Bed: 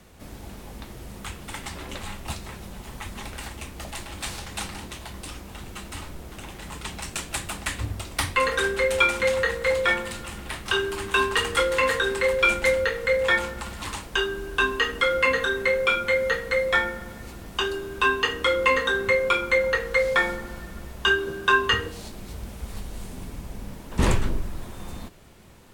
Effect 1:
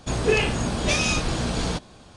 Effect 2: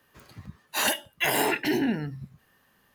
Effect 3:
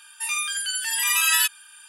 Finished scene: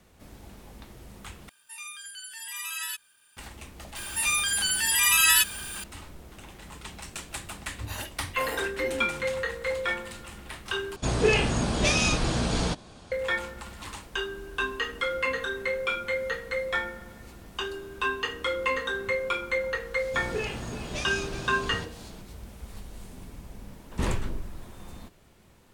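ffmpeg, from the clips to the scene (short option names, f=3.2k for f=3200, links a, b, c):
-filter_complex "[3:a]asplit=2[a][b];[1:a]asplit=2[c][d];[0:a]volume=-7dB[e];[a]acrusher=bits=7:mix=0:aa=0.5[f];[b]aeval=exprs='val(0)+0.5*0.02*sgn(val(0))':c=same[g];[c]acontrast=57[h];[d]aecho=1:1:366:0.266[i];[e]asplit=3[j][k][l];[j]atrim=end=1.494[m];[f]atrim=end=1.88,asetpts=PTS-STARTPTS,volume=-14.5dB[n];[k]atrim=start=3.366:end=10.964[o];[h]atrim=end=2.16,asetpts=PTS-STARTPTS,volume=-7dB[p];[l]atrim=start=13.116[q];[g]atrim=end=1.88,asetpts=PTS-STARTPTS,volume=-0.5dB,afade=t=in:d=0.004:c=hsin,afade=t=out:st=1.876:d=0.004:c=hsin,adelay=3960[r];[2:a]atrim=end=2.94,asetpts=PTS-STARTPTS,volume=-13dB,afade=t=in:d=0.004:c=hsin,afade=t=out:st=2.936:d=0.004:c=hsin,adelay=7130[s];[i]atrim=end=2.16,asetpts=PTS-STARTPTS,volume=-11.5dB,afade=t=in:d=0.004:c=hsin,afade=t=out:st=2.156:d=0.004:c=hsin,adelay=20070[t];[m][n]acrossfade=d=0.004:c1=hsin:c2=hsin[u];[u][o]acrossfade=d=0.004:c1=hsin:c2=hsin[v];[v][p]acrossfade=d=0.004:c1=hsin:c2=hsin[w];[w][q]acrossfade=d=0.004:c1=hsin:c2=hsin[x];[x][r][s][t]amix=inputs=4:normalize=0"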